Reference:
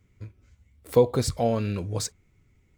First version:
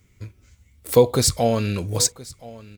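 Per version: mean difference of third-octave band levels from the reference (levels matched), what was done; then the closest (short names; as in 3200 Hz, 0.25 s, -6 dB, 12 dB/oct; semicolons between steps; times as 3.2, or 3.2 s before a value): 3.0 dB: high shelf 3100 Hz +10.5 dB; on a send: echo 1.023 s -20 dB; on the sum: gain +4 dB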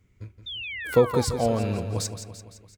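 4.5 dB: painted sound fall, 0.46–1.25, 790–3700 Hz -35 dBFS; feedback echo 0.17 s, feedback 56%, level -10 dB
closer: first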